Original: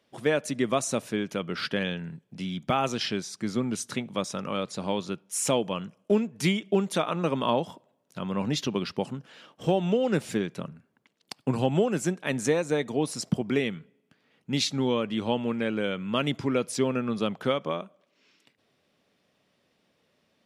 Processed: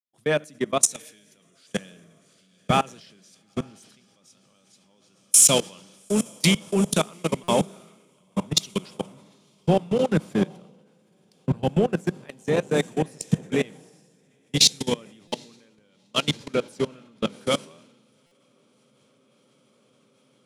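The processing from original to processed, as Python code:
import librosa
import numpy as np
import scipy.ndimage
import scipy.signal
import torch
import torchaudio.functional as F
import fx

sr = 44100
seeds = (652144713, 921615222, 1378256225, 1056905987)

p1 = fx.echo_diffused(x, sr, ms=822, feedback_pct=70, wet_db=-7.5)
p2 = fx.rev_fdn(p1, sr, rt60_s=1.4, lf_ratio=1.5, hf_ratio=0.85, size_ms=29.0, drr_db=15.0)
p3 = 10.0 ** (-23.0 / 20.0) * np.tanh(p2 / 10.0 ** (-23.0 / 20.0))
p4 = p2 + F.gain(torch.from_numpy(p3), -7.0).numpy()
p5 = fx.high_shelf(p4, sr, hz=4600.0, db=8.5)
p6 = fx.level_steps(p5, sr, step_db=22)
p7 = fx.peak_eq(p6, sr, hz=160.0, db=6.0, octaves=0.34)
p8 = fx.buffer_glitch(p7, sr, at_s=(7.43, 15.27, 18.26), block=256, repeats=8)
y = fx.band_widen(p8, sr, depth_pct=100)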